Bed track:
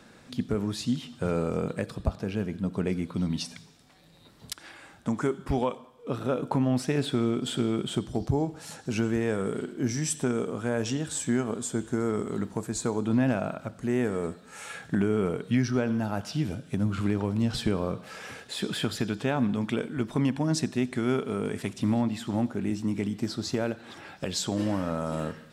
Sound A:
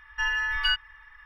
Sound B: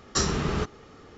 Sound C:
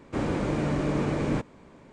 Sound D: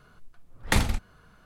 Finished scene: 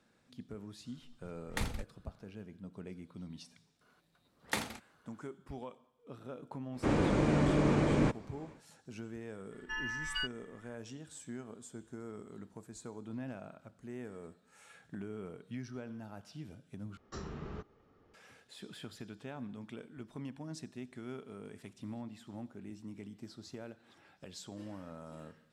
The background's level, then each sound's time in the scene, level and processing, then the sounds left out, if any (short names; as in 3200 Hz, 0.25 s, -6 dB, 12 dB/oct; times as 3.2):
bed track -18 dB
0.85 add D -13.5 dB
3.81 add D -9.5 dB + HPF 230 Hz
6.7 add C -1.5 dB, fades 0.10 s
9.51 add A -12 dB
16.97 replace with B -16 dB + LPF 1400 Hz 6 dB/oct